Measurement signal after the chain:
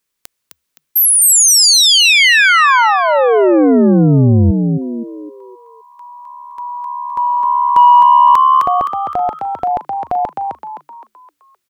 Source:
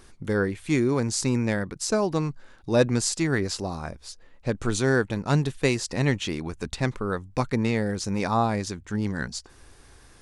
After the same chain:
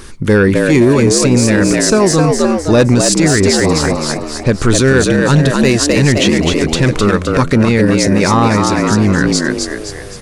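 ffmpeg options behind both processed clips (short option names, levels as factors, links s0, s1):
-filter_complex "[0:a]equalizer=f=710:w=4.1:g=-9,asoftclip=type=tanh:threshold=0.158,asplit=6[s0][s1][s2][s3][s4][s5];[s1]adelay=259,afreqshift=72,volume=0.596[s6];[s2]adelay=518,afreqshift=144,volume=0.257[s7];[s3]adelay=777,afreqshift=216,volume=0.11[s8];[s4]adelay=1036,afreqshift=288,volume=0.0473[s9];[s5]adelay=1295,afreqshift=360,volume=0.0204[s10];[s0][s6][s7][s8][s9][s10]amix=inputs=6:normalize=0,alimiter=level_in=9.44:limit=0.891:release=50:level=0:latency=1,volume=0.891"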